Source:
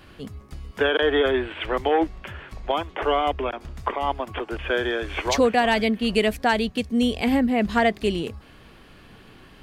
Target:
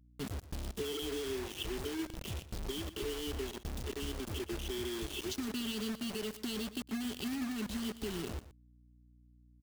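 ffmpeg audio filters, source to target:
-filter_complex "[0:a]asettb=1/sr,asplit=3[s0][s1][s2];[s0]atrim=end=5.074[s3];[s1]atrim=start=5.07:end=7.7,asetpts=PTS-STARTPTS,afade=t=in:d=0.004:c=qsin,afade=t=out:st=2.626:d=0.004:c=qsin,highpass=f=180:p=1[s4];[s2]atrim=start=7.696[s5];[s3][s4]acrossfade=d=0.004:c1=hsin:c2=qsin[s6];[s6][s5]acrossfade=d=0.004:c1=qsin:c2=hsin,afftfilt=real='re*(1-between(b*sr/4096,450,2600))':imag='im*(1-between(b*sr/4096,450,2600))':win_size=4096:overlap=0.75,agate=range=0.0224:threshold=0.01:ratio=3:detection=peak,equalizer=f=1300:t=o:w=1.4:g=-9.5,alimiter=limit=0.0794:level=0:latency=1:release=256,acompressor=threshold=0.0141:ratio=4,acrusher=bits=6:mix=0:aa=0.000001,aeval=exprs='val(0)+0.000891*(sin(2*PI*60*n/s)+sin(2*PI*2*60*n/s)/2+sin(2*PI*3*60*n/s)/3+sin(2*PI*4*60*n/s)/4+sin(2*PI*5*60*n/s)/5)':c=same,aecho=1:1:120:0.178"

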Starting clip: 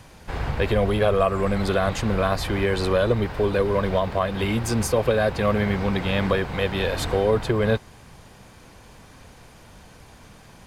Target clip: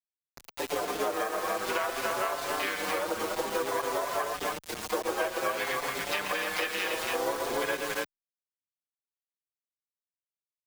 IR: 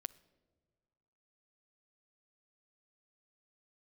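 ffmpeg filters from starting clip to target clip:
-filter_complex "[0:a]afwtdn=0.0447,highpass=710,lowpass=4700,aecho=1:1:119|123|283:0.251|0.282|0.562,asplit=2[s0][s1];[s1]acrusher=bits=3:mode=log:mix=0:aa=0.000001,volume=0.447[s2];[s0][s2]amix=inputs=2:normalize=0,highshelf=f=2100:g=11,aeval=exprs='sgn(val(0))*max(abs(val(0))-0.00668,0)':c=same,asplit=4[s3][s4][s5][s6];[s4]asetrate=29433,aresample=44100,atempo=1.49831,volume=0.447[s7];[s5]asetrate=66075,aresample=44100,atempo=0.66742,volume=0.282[s8];[s6]asetrate=88200,aresample=44100,atempo=0.5,volume=0.251[s9];[s3][s7][s8][s9]amix=inputs=4:normalize=0,acrusher=bits=4:mix=0:aa=0.000001,acompressor=threshold=0.0631:ratio=6,asplit=2[s10][s11];[s11]adelay=5.7,afreqshift=0.56[s12];[s10][s12]amix=inputs=2:normalize=1"

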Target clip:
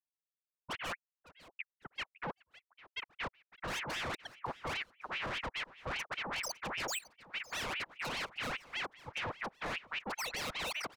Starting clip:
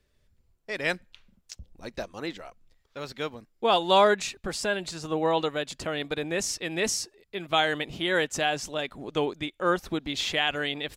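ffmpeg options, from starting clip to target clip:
-af "afftfilt=real='re*gte(hypot(re,im),0.141)':imag='im*gte(hypot(re,im),0.141)':win_size=1024:overlap=0.75,lowshelf=f=160:t=q:w=1.5:g=11,alimiter=limit=0.0944:level=0:latency=1:release=157,areverse,acompressor=threshold=0.00891:ratio=8,areverse,lowpass=f=5900:t=q:w=2.3,aeval=exprs='(tanh(398*val(0)+0.7)-tanh(0.7))/398':c=same,aecho=1:1:557|1114|1671:0.112|0.0381|0.013,aeval=exprs='val(0)*sin(2*PI*1600*n/s+1600*0.7/5*sin(2*PI*5*n/s))':c=same,volume=7.08"

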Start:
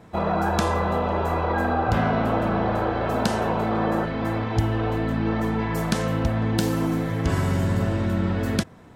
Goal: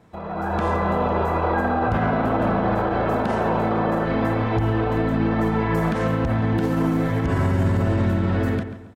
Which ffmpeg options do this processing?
-filter_complex "[0:a]acrossover=split=2600[s0][s1];[s1]acompressor=threshold=0.00316:ratio=4:attack=1:release=60[s2];[s0][s2]amix=inputs=2:normalize=0,alimiter=limit=0.1:level=0:latency=1:release=83,dynaudnorm=f=100:g=9:m=4.22,asplit=2[s3][s4];[s4]adelay=138,lowpass=f=3600:p=1,volume=0.282,asplit=2[s5][s6];[s6]adelay=138,lowpass=f=3600:p=1,volume=0.37,asplit=2[s7][s8];[s8]adelay=138,lowpass=f=3600:p=1,volume=0.37,asplit=2[s9][s10];[s10]adelay=138,lowpass=f=3600:p=1,volume=0.37[s11];[s5][s7][s9][s11]amix=inputs=4:normalize=0[s12];[s3][s12]amix=inputs=2:normalize=0,volume=0.531"

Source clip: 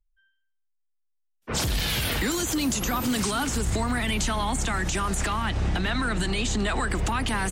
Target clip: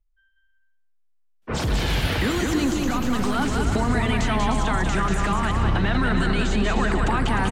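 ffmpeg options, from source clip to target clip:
-filter_complex "[0:a]asettb=1/sr,asplit=3[s0][s1][s2];[s0]atrim=end=2.664[s3];[s1]atrim=start=2.66:end=3.36,asetpts=PTS-STARTPTS,afade=t=in:d=0.004:c=qsin,afade=t=out:st=0.696:d=0.004:c=qsin,aeval=exprs='if(lt(val(0),0),0.447*val(0),val(0))':c=same[s4];[s2]atrim=start=3.356[s5];[s3][s4]acrossfade=d=0.004:c1=hsin:c2=qsin[s6];[s6][s5]acrossfade=d=0.004:c1=qsin:c2=hsin,lowpass=f=1900:p=1,aecho=1:1:190|304|372.4|413.4|438.1:0.631|0.398|0.251|0.158|0.1,volume=1.5"

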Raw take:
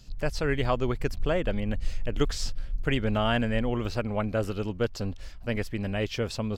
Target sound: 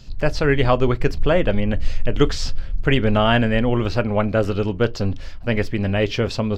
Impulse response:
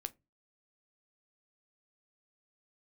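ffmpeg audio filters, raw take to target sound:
-filter_complex "[0:a]asplit=2[s0][s1];[1:a]atrim=start_sample=2205,asetrate=52920,aresample=44100,lowpass=6200[s2];[s1][s2]afir=irnorm=-1:irlink=0,volume=2.99[s3];[s0][s3]amix=inputs=2:normalize=0"

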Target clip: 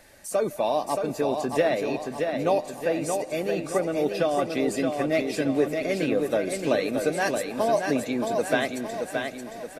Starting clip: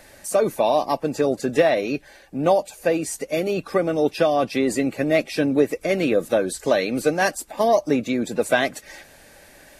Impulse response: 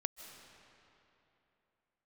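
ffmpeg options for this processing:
-filter_complex "[0:a]aecho=1:1:624|1248|1872|2496|3120|3744:0.562|0.27|0.13|0.0622|0.0299|0.0143,asplit=2[s0][s1];[1:a]atrim=start_sample=2205[s2];[s1][s2]afir=irnorm=-1:irlink=0,volume=0.473[s3];[s0][s3]amix=inputs=2:normalize=0,volume=0.376"

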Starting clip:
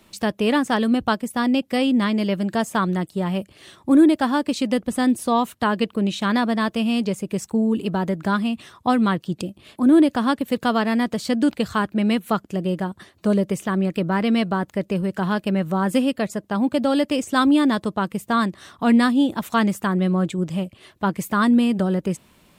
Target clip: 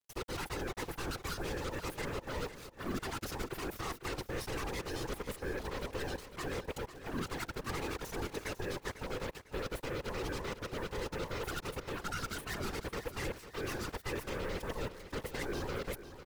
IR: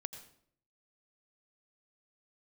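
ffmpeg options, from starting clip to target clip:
-filter_complex "[0:a]afftfilt=real='real(if(between(b,1,1008),(2*floor((b-1)/24)+1)*24-b,b),0)':imag='imag(if(between(b,1,1008),(2*floor((b-1)/24)+1)*24-b,b),0)*if(between(b,1,1008),-1,1)':win_size=2048:overlap=0.75,aecho=1:1:6.1:0.81,areverse,acompressor=threshold=0.0355:ratio=5,areverse,aeval=exprs='0.1*(cos(1*acos(clip(val(0)/0.1,-1,1)))-cos(1*PI/2))+0.002*(cos(2*acos(clip(val(0)/0.1,-1,1)))-cos(2*PI/2))+0.0158*(cos(4*acos(clip(val(0)/0.1,-1,1)))-cos(4*PI/2))+0.02*(cos(6*acos(clip(val(0)/0.1,-1,1)))-cos(6*PI/2))+0.0398*(cos(8*acos(clip(val(0)/0.1,-1,1)))-cos(8*PI/2))':c=same,afftfilt=real='hypot(re,im)*cos(2*PI*random(0))':imag='hypot(re,im)*sin(2*PI*random(1))':win_size=512:overlap=0.75,asetrate=61299,aresample=44100,acrusher=bits=7:mix=0:aa=0.5,asplit=2[s0][s1];[s1]aecho=0:1:500|1000|1500|2000:0.237|0.0854|0.0307|0.0111[s2];[s0][s2]amix=inputs=2:normalize=0,volume=0.531"

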